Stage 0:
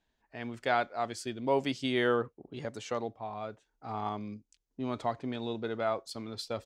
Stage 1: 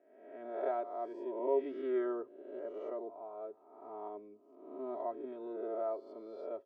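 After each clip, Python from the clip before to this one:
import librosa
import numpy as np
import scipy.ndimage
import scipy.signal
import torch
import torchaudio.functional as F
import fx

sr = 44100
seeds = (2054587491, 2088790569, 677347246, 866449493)

y = fx.spec_swells(x, sr, rise_s=0.95)
y = fx.ladder_bandpass(y, sr, hz=480.0, resonance_pct=60)
y = y + 0.92 * np.pad(y, (int(3.1 * sr / 1000.0), 0))[:len(y)]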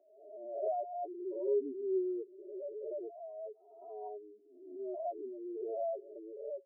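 y = fx.spec_expand(x, sr, power=3.7)
y = y * 10.0 ** (1.0 / 20.0)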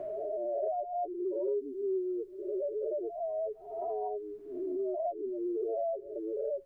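y = scipy.signal.sosfilt(scipy.signal.butter(2, 270.0, 'highpass', fs=sr, output='sos'), x)
y = fx.dmg_noise_colour(y, sr, seeds[0], colour='brown', level_db=-78.0)
y = fx.band_squash(y, sr, depth_pct=100)
y = y * 10.0 ** (5.0 / 20.0)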